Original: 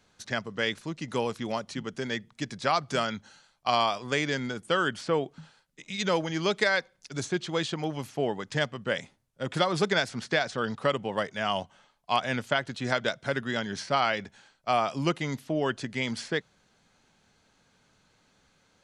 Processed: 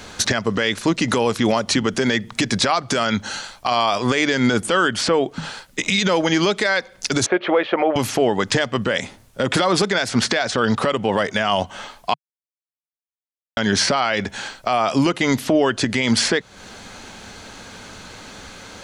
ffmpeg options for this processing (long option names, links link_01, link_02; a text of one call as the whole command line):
ffmpeg -i in.wav -filter_complex "[0:a]asettb=1/sr,asplit=3[link_01][link_02][link_03];[link_01]atrim=end=7.264[link_04];[link_02]atrim=start=7.26:end=7.96,asetpts=PTS-STARTPTS,afade=type=in:duration=0.004:curve=qsin,afade=type=out:start_time=0.696:duration=0.004:curve=qsin,highpass=470,equalizer=frequency=560:width_type=q:width=4:gain=8,equalizer=frequency=1000:width_type=q:width=4:gain=-3,equalizer=frequency=1600:width_type=q:width=4:gain=-4,lowpass=frequency=2200:width=0.5412,lowpass=frequency=2200:width=1.3066[link_05];[link_03]atrim=start=7.956[link_06];[link_04][link_05]acrossfade=duration=0.004:curve1=hsin:curve2=qsin[link_07];[link_07][link_06]acrossfade=duration=0.004:curve1=qsin:curve2=hsin,asplit=3[link_08][link_09][link_10];[link_08]atrim=end=12.14,asetpts=PTS-STARTPTS,afade=type=out:start_time=12.136:duration=0.004:curve=hsin[link_11];[link_09]atrim=start=12.14:end=13.57,asetpts=PTS-STARTPTS,volume=0[link_12];[link_10]atrim=start=13.57,asetpts=PTS-STARTPTS,afade=type=in:duration=0.004:curve=hsin[link_13];[link_11][link_12][link_13]concat=n=3:v=0:a=1,acompressor=threshold=-39dB:ratio=6,equalizer=frequency=150:width_type=o:width=0.21:gain=-14.5,alimiter=level_in=34dB:limit=-1dB:release=50:level=0:latency=1,volume=-6.5dB" out.wav